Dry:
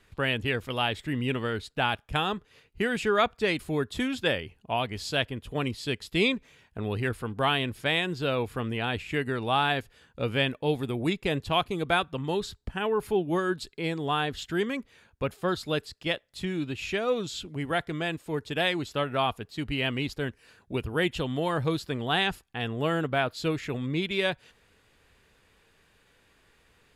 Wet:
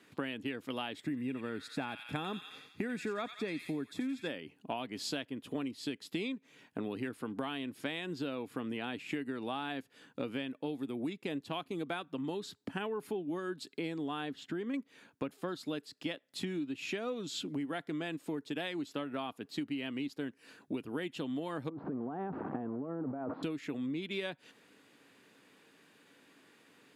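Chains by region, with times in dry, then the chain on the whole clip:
0:01.04–0:04.29: Butterworth band-reject 3,000 Hz, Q 6.3 + low-shelf EQ 140 Hz +8.5 dB + delay with a high-pass on its return 88 ms, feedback 51%, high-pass 2,300 Hz, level −5 dB
0:14.33–0:14.74: high-shelf EQ 3,000 Hz −10.5 dB + downward compressor 1.5 to 1, threshold −42 dBFS
0:21.69–0:23.43: converter with a step at zero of −30.5 dBFS + low-pass filter 1,100 Hz 24 dB per octave + compressor whose output falls as the input rises −34 dBFS
whole clip: high-pass filter 150 Hz 24 dB per octave; parametric band 280 Hz +11 dB 0.43 octaves; downward compressor 12 to 1, threshold −34 dBFS

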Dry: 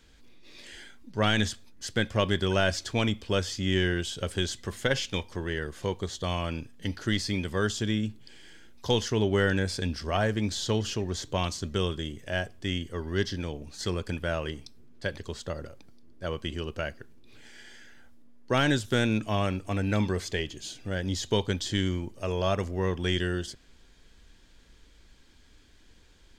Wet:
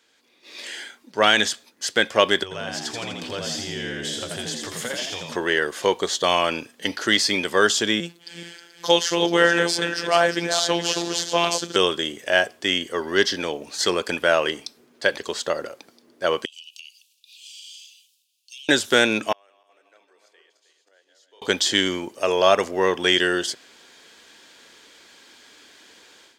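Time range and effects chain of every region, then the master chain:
0:02.43–0:05.36: downward compressor 4 to 1, threshold −41 dBFS + low shelf with overshoot 130 Hz +8.5 dB, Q 3 + echo with shifted repeats 83 ms, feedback 49%, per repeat +69 Hz, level −4 dB
0:08.00–0:11.76: feedback delay that plays each chunk backwards 216 ms, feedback 48%, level −8 dB + phases set to zero 171 Hz
0:16.45–0:18.69: Butterworth high-pass 2,600 Hz 96 dB per octave + downward compressor 10 to 1, threshold −51 dBFS
0:19.32–0:21.42: feedback delay that plays each chunk backwards 157 ms, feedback 57%, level −4 dB + high-pass filter 360 Hz 24 dB per octave + gate with flip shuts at −30 dBFS, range −39 dB
whole clip: high-pass filter 430 Hz 12 dB per octave; automatic gain control gain up to 14 dB

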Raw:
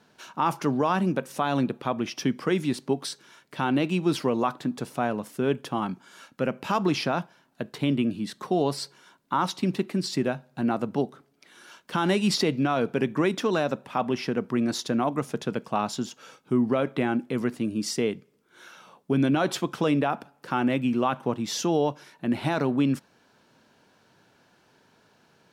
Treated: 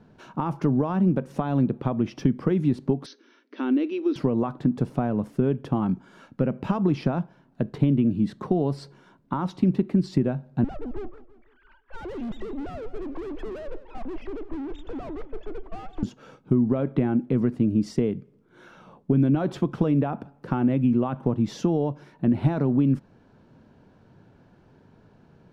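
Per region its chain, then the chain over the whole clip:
0:03.06–0:04.16: linear-phase brick-wall band-pass 230–6,400 Hz + parametric band 770 Hz −12 dB 1.2 octaves
0:10.64–0:16.03: three sine waves on the formant tracks + tube saturation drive 39 dB, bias 0.75 + feedback echo with a swinging delay time 166 ms, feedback 44%, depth 142 cents, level −15.5 dB
whole clip: downward compressor 4 to 1, threshold −27 dBFS; spectral tilt −4.5 dB per octave

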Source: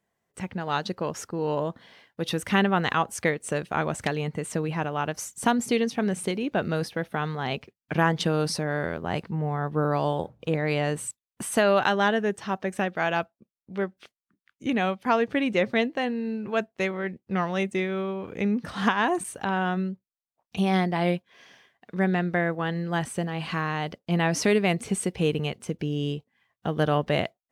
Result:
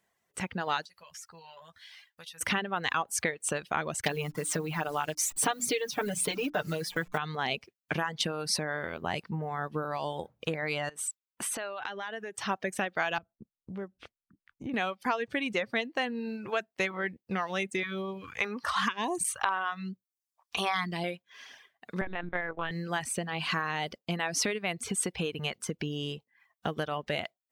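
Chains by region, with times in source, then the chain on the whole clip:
0:00.85–0:02.41: guitar amp tone stack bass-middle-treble 10-0-10 + downward compressor 8 to 1, threshold −49 dBFS + double-tracking delay 12 ms −5 dB
0:04.01–0:07.18: hold until the input has moved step −43.5 dBFS + mains-hum notches 60/120/180/240/300 Hz + comb filter 6.7 ms, depth 98%
0:10.89–0:12.38: bass and treble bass −8 dB, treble −4 dB + downward compressor 12 to 1, threshold −34 dBFS
0:13.18–0:14.74: one scale factor per block 7 bits + spectral tilt −4.5 dB per octave + downward compressor 2.5 to 1, threshold −40 dBFS
0:17.83–0:21.04: parametric band 1,100 Hz +12 dB 0.49 octaves + all-pass phaser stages 2, 1 Hz, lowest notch 140–1,400 Hz
0:22.01–0:22.71: high-frequency loss of the air 57 metres + linear-prediction vocoder at 8 kHz pitch kept
whole clip: downward compressor 10 to 1, threshold −27 dBFS; tilt shelving filter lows −4.5 dB, about 740 Hz; reverb reduction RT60 0.74 s; level +1.5 dB

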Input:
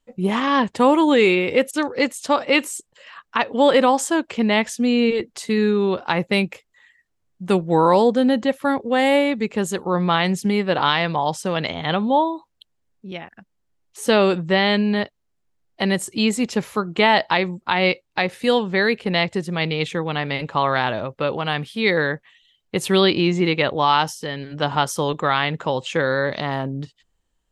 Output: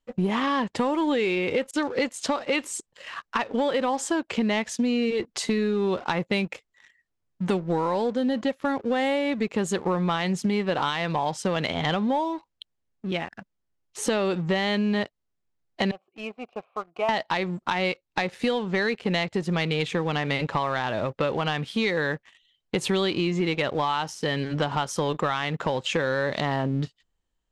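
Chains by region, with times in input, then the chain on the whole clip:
0:15.91–0:17.09: formant filter a + high-frequency loss of the air 390 metres + notch filter 1,700 Hz, Q 27
whole clip: downward compressor 10 to 1, threshold −26 dBFS; leveller curve on the samples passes 2; low-pass filter 7,700 Hz 12 dB per octave; level −2.5 dB

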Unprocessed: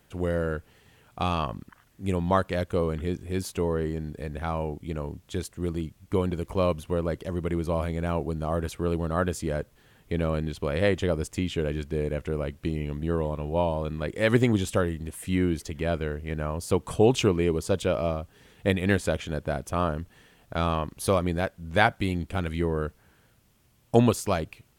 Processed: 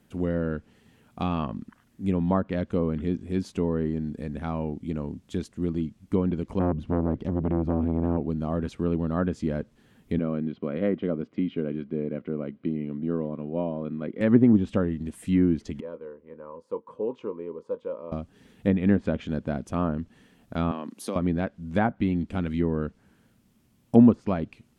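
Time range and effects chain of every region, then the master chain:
0:06.59–0:08.17: low-shelf EQ 240 Hz +10.5 dB + saturating transformer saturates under 740 Hz
0:10.19–0:14.21: band-pass filter 170–6,400 Hz + high-frequency loss of the air 370 metres + notch comb filter 880 Hz
0:15.80–0:18.12: pair of resonant band-passes 710 Hz, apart 0.94 octaves + double-tracking delay 24 ms −14 dB
0:20.71–0:21.16: high-pass filter 220 Hz 24 dB per octave + high-shelf EQ 8,700 Hz +6.5 dB + downward compressor 2.5 to 1, threshold −28 dBFS
whole clip: treble cut that deepens with the level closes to 1,300 Hz, closed at −18.5 dBFS; parametric band 230 Hz +13 dB 0.97 octaves; level −4.5 dB

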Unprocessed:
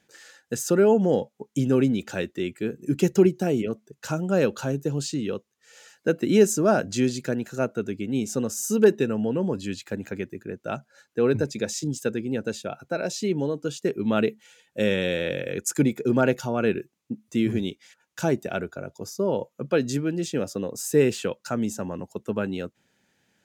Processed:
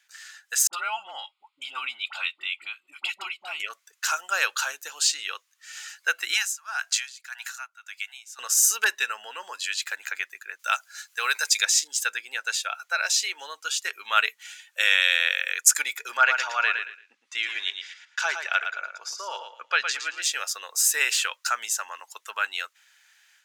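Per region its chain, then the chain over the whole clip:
0:00.67–0:03.60: low-pass filter 4,700 Hz + phaser with its sweep stopped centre 1,700 Hz, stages 6 + all-pass dispersion highs, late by 59 ms, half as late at 910 Hz
0:06.34–0:08.39: Butterworth high-pass 720 Hz 72 dB per octave + tremolo with a sine in dB 1.8 Hz, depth 20 dB
0:10.59–0:11.65: high-pass filter 350 Hz + high-shelf EQ 4,000 Hz +11.5 dB
0:16.17–0:20.22: low-pass filter 4,500 Hz + repeating echo 113 ms, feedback 23%, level −7.5 dB
whole clip: high-pass filter 1,200 Hz 24 dB per octave; automatic gain control gain up to 7.5 dB; level +4 dB

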